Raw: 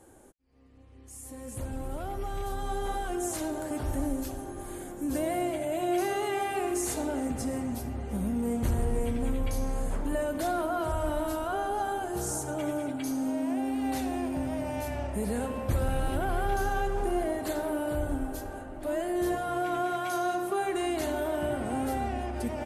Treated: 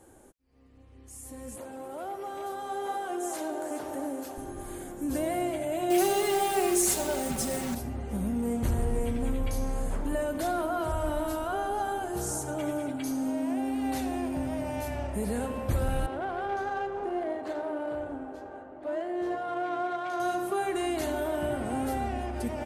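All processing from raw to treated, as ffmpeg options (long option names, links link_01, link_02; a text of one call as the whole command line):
ffmpeg -i in.wav -filter_complex "[0:a]asettb=1/sr,asplit=3[link_01][link_02][link_03];[link_01]atrim=end=1.564[link_04];[link_02]atrim=start=1.56:end=4.38,asetpts=PTS-STARTPTS,afade=type=in:duration=0.004:curve=qsin,afade=type=out:start_time=2.816:duration=0.004:curve=qsin,highpass=420,tiltshelf=frequency=1200:gain=4,aecho=1:1:423:0.316,atrim=end_sample=124362[link_05];[link_03]atrim=start=4.376[link_06];[link_04][link_05]acrossfade=duration=0.004:curve1=hsin:curve2=qsin[link_07];[link_07][link_06]acrossfade=duration=0.004:curve1=qsin:curve2=hsin,asettb=1/sr,asplit=3[link_08][link_09][link_10];[link_08]atrim=end=5.904[link_11];[link_09]atrim=start=5.9:end=7.75,asetpts=PTS-STARTPTS,afade=type=in:duration=0.004:curve=qsin,afade=type=out:start_time=1.846:duration=0.004:curve=qsin,highshelf=frequency=3600:gain=7,acrusher=bits=7:dc=4:mix=0:aa=0.000001,aecho=1:1:5.3:0.78,atrim=end_sample=81585[link_12];[link_10]atrim=start=7.746[link_13];[link_11][link_12]acrossfade=duration=0.004:curve1=hsin:curve2=qsin[link_14];[link_14][link_13]acrossfade=duration=0.004:curve1=qsin:curve2=hsin,asettb=1/sr,asplit=3[link_15][link_16][link_17];[link_15]atrim=end=16.064[link_18];[link_16]atrim=start=16.06:end=20.2,asetpts=PTS-STARTPTS,afade=type=in:duration=0.004:curve=qsin,afade=type=out:start_time=4.136:duration=0.004:curve=qsin,bass=frequency=250:gain=-12,treble=frequency=4000:gain=8,adynamicsmooth=sensitivity=1.5:basefreq=1500,highpass=81[link_19];[link_17]atrim=start=20.196[link_20];[link_18][link_19]acrossfade=duration=0.004:curve1=hsin:curve2=qsin[link_21];[link_21][link_20]acrossfade=duration=0.004:curve1=qsin:curve2=hsin" out.wav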